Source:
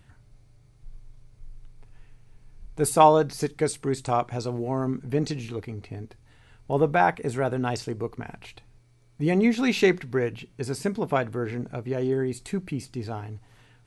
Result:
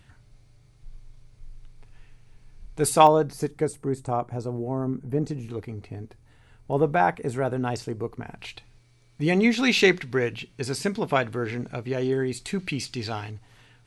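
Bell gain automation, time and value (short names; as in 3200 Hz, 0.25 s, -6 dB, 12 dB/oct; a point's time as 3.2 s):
bell 3600 Hz 2.4 oct
+4.5 dB
from 3.07 s -7 dB
from 3.65 s -14 dB
from 5.5 s -3 dB
from 8.39 s +7.5 dB
from 12.59 s +14.5 dB
from 13.31 s +4 dB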